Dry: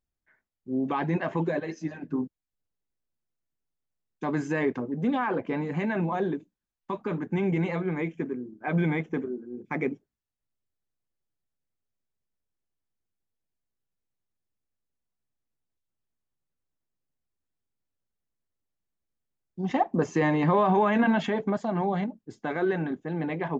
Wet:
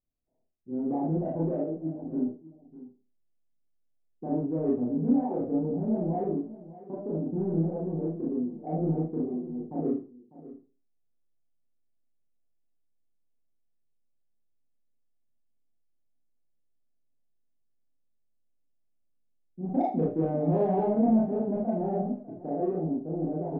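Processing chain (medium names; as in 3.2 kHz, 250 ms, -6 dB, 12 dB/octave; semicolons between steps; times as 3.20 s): elliptic low-pass 730 Hz, stop band 50 dB; in parallel at -11.5 dB: saturation -26 dBFS, distortion -11 dB; on the sum: delay 599 ms -17 dB; Schroeder reverb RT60 0.35 s, combs from 25 ms, DRR -5 dB; trim -7 dB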